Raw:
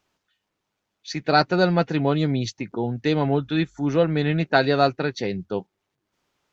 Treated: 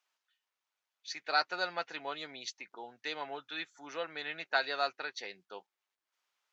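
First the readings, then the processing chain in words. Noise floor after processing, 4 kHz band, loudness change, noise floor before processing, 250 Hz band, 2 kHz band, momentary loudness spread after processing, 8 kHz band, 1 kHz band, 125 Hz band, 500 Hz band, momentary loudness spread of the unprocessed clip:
under -85 dBFS, -7.5 dB, -14.0 dB, -80 dBFS, -29.0 dB, -8.0 dB, 16 LU, n/a, -12.0 dB, -39.5 dB, -18.5 dB, 10 LU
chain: HPF 980 Hz 12 dB/oct; gain -7.5 dB

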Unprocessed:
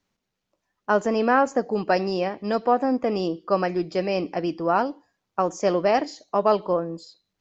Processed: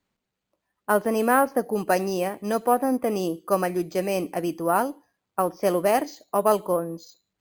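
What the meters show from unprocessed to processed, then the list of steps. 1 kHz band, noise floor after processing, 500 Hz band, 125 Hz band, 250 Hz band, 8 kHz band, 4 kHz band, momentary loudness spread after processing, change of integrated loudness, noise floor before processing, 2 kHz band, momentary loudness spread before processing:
-0.5 dB, -83 dBFS, -0.5 dB, -1.0 dB, -1.0 dB, n/a, -3.0 dB, 7 LU, -0.5 dB, -81 dBFS, -1.0 dB, 7 LU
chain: careless resampling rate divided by 4×, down filtered, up hold; added harmonics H 3 -30 dB, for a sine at -6 dBFS

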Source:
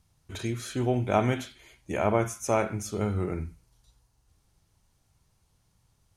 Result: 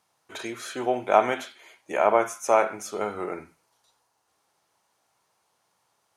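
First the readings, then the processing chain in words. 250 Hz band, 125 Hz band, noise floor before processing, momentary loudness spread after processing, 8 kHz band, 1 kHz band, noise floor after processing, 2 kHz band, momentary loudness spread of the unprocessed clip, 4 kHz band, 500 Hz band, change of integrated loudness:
-4.5 dB, -18.0 dB, -70 dBFS, 16 LU, +0.5 dB, +7.5 dB, -73 dBFS, +5.0 dB, 11 LU, +2.0 dB, +4.5 dB, +3.5 dB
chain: HPF 820 Hz 12 dB/oct; tilt shelf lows +7.5 dB, about 1300 Hz; gain +7.5 dB

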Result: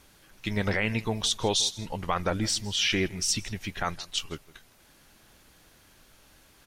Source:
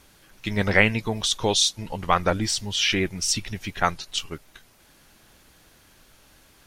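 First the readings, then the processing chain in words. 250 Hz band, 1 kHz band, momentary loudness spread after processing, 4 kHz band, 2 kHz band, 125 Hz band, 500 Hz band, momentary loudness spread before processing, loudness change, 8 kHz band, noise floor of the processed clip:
-3.5 dB, -7.0 dB, 10 LU, -3.5 dB, -7.0 dB, -3.5 dB, -5.5 dB, 14 LU, -5.0 dB, -3.5 dB, -59 dBFS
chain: limiter -12.5 dBFS, peak gain reduction 11 dB; on a send: echo 0.162 s -20.5 dB; on the sum: gain -2.5 dB

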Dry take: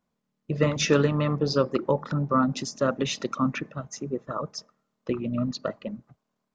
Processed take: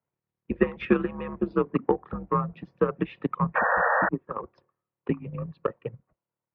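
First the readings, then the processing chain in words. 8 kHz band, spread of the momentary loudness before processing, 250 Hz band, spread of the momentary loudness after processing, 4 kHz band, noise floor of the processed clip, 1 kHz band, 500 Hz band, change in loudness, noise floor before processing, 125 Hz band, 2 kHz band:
n/a, 15 LU, -2.0 dB, 14 LU, under -15 dB, under -85 dBFS, +3.5 dB, -1.0 dB, -1.0 dB, -80 dBFS, -5.0 dB, +6.5 dB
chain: transient shaper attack +11 dB, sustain -3 dB; mistuned SSB -92 Hz 220–2800 Hz; painted sound noise, 3.55–4.09, 450–1900 Hz -16 dBFS; gain -7 dB

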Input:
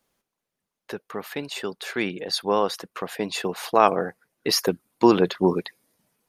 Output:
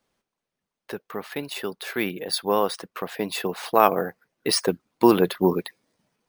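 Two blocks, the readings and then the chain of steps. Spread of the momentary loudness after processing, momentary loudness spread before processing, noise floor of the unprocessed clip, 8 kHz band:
15 LU, 15 LU, -85 dBFS, +1.0 dB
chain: careless resampling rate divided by 3×, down filtered, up hold

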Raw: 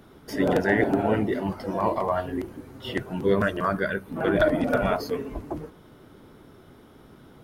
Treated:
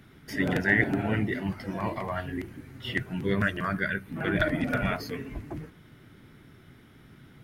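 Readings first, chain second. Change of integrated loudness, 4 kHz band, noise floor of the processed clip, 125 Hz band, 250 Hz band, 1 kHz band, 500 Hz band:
-3.5 dB, -0.5 dB, -54 dBFS, +0.5 dB, -3.5 dB, -7.0 dB, -9.0 dB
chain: graphic EQ 125/500/1000/2000 Hz +6/-7/-6/+9 dB; gain -3 dB

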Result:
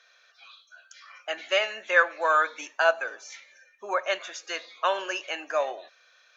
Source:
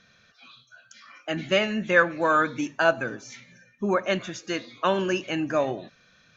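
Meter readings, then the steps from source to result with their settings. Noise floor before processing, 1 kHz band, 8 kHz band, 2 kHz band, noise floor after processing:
-60 dBFS, 0.0 dB, n/a, 0.0 dB, -62 dBFS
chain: HPF 550 Hz 24 dB/oct

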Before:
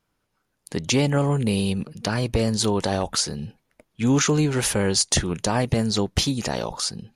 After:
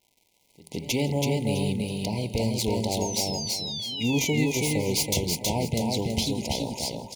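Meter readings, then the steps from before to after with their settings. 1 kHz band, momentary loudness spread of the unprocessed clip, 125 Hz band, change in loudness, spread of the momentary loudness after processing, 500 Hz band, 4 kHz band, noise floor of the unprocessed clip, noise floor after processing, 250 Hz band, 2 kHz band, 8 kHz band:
-5.0 dB, 8 LU, -4.0 dB, -4.0 dB, 5 LU, -3.5 dB, -2.0 dB, -74 dBFS, -67 dBFS, -3.5 dB, -4.0 dB, -4.0 dB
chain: tracing distortion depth 0.042 ms; HPF 48 Hz; de-hum 66.61 Hz, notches 30; pre-echo 0.164 s -19 dB; in parallel at -10.5 dB: short-mantissa float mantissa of 2-bit; on the sum: painted sound fall, 3.01–4.95, 1300–6700 Hz -28 dBFS; crackle 320/s -42 dBFS; on a send: feedback echo 0.328 s, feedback 27%, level -3 dB; on the sum: FFT band-reject 1000–2000 Hz; gain -7.5 dB

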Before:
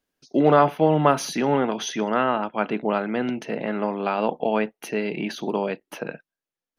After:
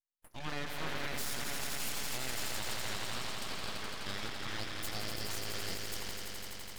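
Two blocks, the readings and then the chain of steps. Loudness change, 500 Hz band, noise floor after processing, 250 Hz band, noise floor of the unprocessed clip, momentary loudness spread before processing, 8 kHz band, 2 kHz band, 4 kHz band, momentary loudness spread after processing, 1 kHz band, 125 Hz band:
-15.0 dB, -24.0 dB, -48 dBFS, -23.0 dB, under -85 dBFS, 10 LU, -2.0 dB, -8.0 dB, -1.5 dB, 4 LU, -20.5 dB, -15.5 dB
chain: bell 2200 Hz +8 dB 0.67 oct; gate with hold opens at -40 dBFS; pre-emphasis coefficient 0.97; swelling echo 84 ms, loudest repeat 5, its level -7.5 dB; full-wave rectifier; limiter -25.5 dBFS, peak gain reduction 9 dB; gain +1 dB

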